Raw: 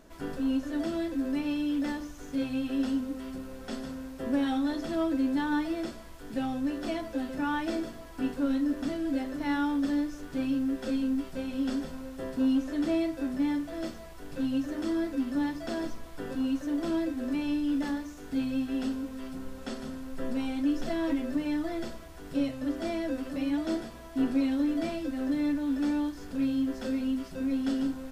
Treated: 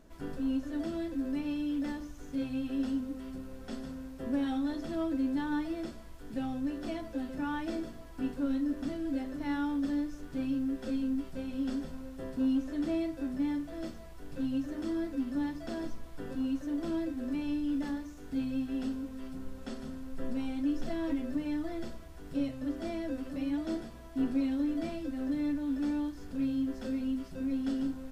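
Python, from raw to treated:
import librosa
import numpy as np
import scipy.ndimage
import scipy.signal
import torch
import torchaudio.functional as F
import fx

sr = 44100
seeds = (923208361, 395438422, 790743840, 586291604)

y = fx.low_shelf(x, sr, hz=250.0, db=7.0)
y = y * 10.0 ** (-6.5 / 20.0)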